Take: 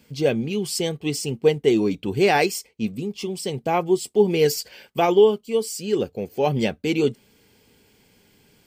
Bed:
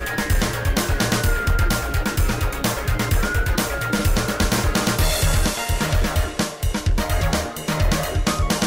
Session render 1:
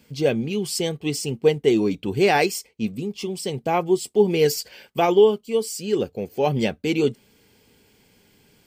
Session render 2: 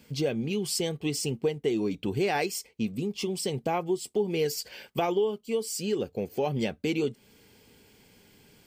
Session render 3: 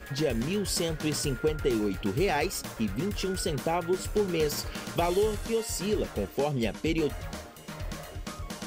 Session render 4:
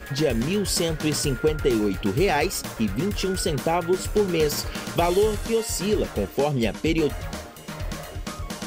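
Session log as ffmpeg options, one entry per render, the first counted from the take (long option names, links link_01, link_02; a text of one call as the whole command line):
ffmpeg -i in.wav -af anull out.wav
ffmpeg -i in.wav -af "acompressor=threshold=-27dB:ratio=3" out.wav
ffmpeg -i in.wav -i bed.wav -filter_complex "[1:a]volume=-18dB[link_01];[0:a][link_01]amix=inputs=2:normalize=0" out.wav
ffmpeg -i in.wav -af "volume=5.5dB" out.wav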